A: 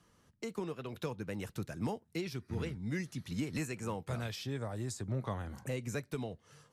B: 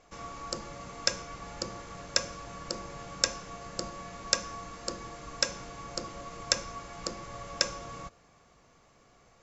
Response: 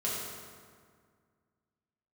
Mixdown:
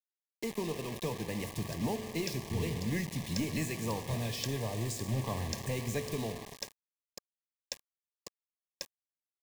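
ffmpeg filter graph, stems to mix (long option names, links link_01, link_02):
-filter_complex "[0:a]aeval=exprs='(tanh(28.2*val(0)+0.2)-tanh(0.2))/28.2':channel_layout=same,volume=2.5dB,asplit=2[link_01][link_02];[link_02]volume=-13.5dB[link_03];[1:a]adynamicequalizer=threshold=0.00631:dfrequency=1600:dqfactor=0.7:tfrequency=1600:tqfactor=0.7:attack=5:release=100:ratio=0.375:range=2:mode=cutabove:tftype=highshelf,adelay=1200,volume=-13.5dB[link_04];[2:a]atrim=start_sample=2205[link_05];[link_03][link_05]afir=irnorm=-1:irlink=0[link_06];[link_01][link_04][link_06]amix=inputs=3:normalize=0,acrusher=bits=6:mix=0:aa=0.000001,asuperstop=centerf=1400:order=8:qfactor=3.1"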